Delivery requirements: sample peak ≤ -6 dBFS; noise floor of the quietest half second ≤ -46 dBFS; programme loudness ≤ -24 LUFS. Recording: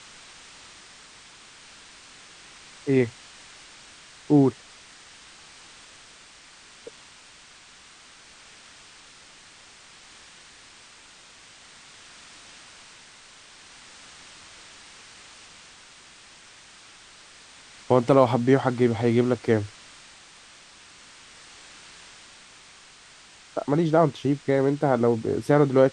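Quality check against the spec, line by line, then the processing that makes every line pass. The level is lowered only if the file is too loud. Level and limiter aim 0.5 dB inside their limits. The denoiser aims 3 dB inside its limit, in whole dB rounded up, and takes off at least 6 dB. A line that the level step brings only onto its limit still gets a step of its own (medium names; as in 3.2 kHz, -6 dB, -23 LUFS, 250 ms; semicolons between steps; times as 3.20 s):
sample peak -4.5 dBFS: fail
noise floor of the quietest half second -50 dBFS: pass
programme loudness -22.5 LUFS: fail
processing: trim -2 dB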